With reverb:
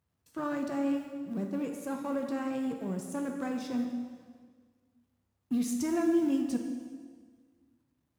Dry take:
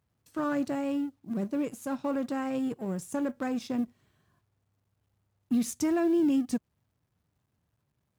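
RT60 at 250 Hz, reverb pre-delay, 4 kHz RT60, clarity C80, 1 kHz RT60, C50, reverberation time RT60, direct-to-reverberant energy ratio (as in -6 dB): 1.8 s, 4 ms, 1.5 s, 6.5 dB, 1.6 s, 5.0 dB, 1.7 s, 2.5 dB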